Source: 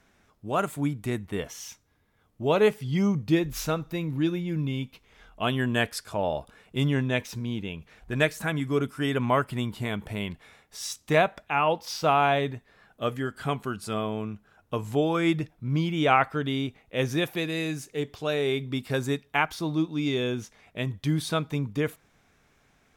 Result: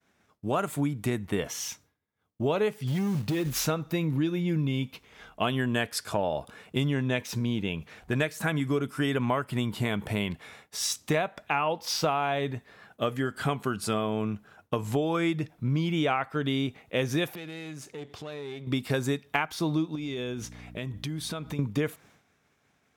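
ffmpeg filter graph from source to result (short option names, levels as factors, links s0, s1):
-filter_complex "[0:a]asettb=1/sr,asplit=3[s0][s1][s2];[s0]atrim=end=2.874[s3];[s1]atrim=start=2.87:end=3.63,asetpts=PTS-STARTPTS,afade=t=in:d=0.004:c=qsin,afade=t=out:st=0.756:d=0.004:c=qsin,acompressor=threshold=0.0447:ratio=8:attack=3.2:release=140:knee=1:detection=peak,asoftclip=type=hard:threshold=0.0473,acrusher=bits=5:mode=log:mix=0:aa=0.000001[s4];[s2]atrim=start=3.626[s5];[s3][s4]acrossfade=d=0.004:c1=hsin:c2=qsin[s6];[s6][s5]acrossfade=d=0.004:c1=qsin:c2=hsin,asettb=1/sr,asplit=3[s7][s8][s9];[s7]atrim=end=17.354[s10];[s8]atrim=start=17.35:end=18.67,asetpts=PTS-STARTPTS,afade=t=in:d=0.004:c=qsin,afade=t=out:st=1.316:d=0.004:c=qsin,aeval=exprs='if(lt(val(0),0),0.447*val(0),val(0))':c=same,highshelf=f=12000:g=-11,acompressor=threshold=0.00708:ratio=4:attack=3.2:release=140:knee=1:detection=peak[s11];[s9]atrim=start=18.666[s12];[s10][s11]acrossfade=d=0.004:c1=hsin:c2=qsin[s13];[s13][s12]acrossfade=d=0.004:c1=qsin:c2=hsin,asettb=1/sr,asplit=3[s14][s15][s16];[s14]atrim=end=19.954[s17];[s15]atrim=start=19.95:end=21.59,asetpts=PTS-STARTPTS,afade=t=in:d=0.004:c=qsin,afade=t=out:st=1.636:d=0.004:c=qsin,aeval=exprs='val(0)+0.00447*(sin(2*PI*60*n/s)+sin(2*PI*2*60*n/s)/2+sin(2*PI*3*60*n/s)/3+sin(2*PI*4*60*n/s)/4+sin(2*PI*5*60*n/s)/5)':c=same,acompressor=threshold=0.0158:ratio=10:attack=3.2:release=140:knee=1:detection=peak[s18];[s16]atrim=start=21.586[s19];[s17][s18]acrossfade=d=0.004:c1=hsin:c2=qsin[s20];[s20][s19]acrossfade=d=0.004:c1=qsin:c2=hsin,highpass=86,agate=range=0.0224:threshold=0.00158:ratio=3:detection=peak,acompressor=threshold=0.0316:ratio=6,volume=2"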